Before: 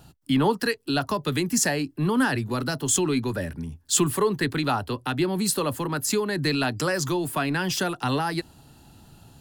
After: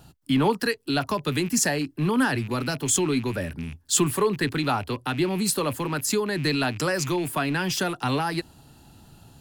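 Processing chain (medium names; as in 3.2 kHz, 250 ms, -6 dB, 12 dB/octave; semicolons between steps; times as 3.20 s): rattle on loud lows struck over -32 dBFS, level -31 dBFS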